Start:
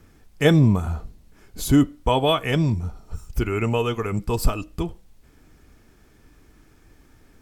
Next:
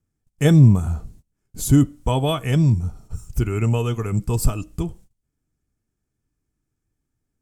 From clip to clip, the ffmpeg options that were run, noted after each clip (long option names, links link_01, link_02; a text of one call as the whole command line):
ffmpeg -i in.wav -af "agate=range=-25dB:threshold=-44dB:ratio=16:detection=peak,equalizer=frequency=125:width_type=o:width=1:gain=7,equalizer=frequency=500:width_type=o:width=1:gain=-3,equalizer=frequency=1000:width_type=o:width=1:gain=-3,equalizer=frequency=2000:width_type=o:width=1:gain=-4,equalizer=frequency=4000:width_type=o:width=1:gain=-5,equalizer=frequency=8000:width_type=o:width=1:gain=7" out.wav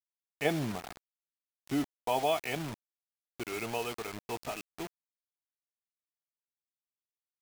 ffmpeg -i in.wav -af "highpass=500,equalizer=frequency=510:width_type=q:width=4:gain=-4,equalizer=frequency=720:width_type=q:width=4:gain=7,equalizer=frequency=1100:width_type=q:width=4:gain=-6,equalizer=frequency=1500:width_type=q:width=4:gain=-6,equalizer=frequency=2300:width_type=q:width=4:gain=4,equalizer=frequency=3800:width_type=q:width=4:gain=-10,lowpass=frequency=4000:width=0.5412,lowpass=frequency=4000:width=1.3066,acrusher=bits=5:mix=0:aa=0.000001,volume=-4.5dB" out.wav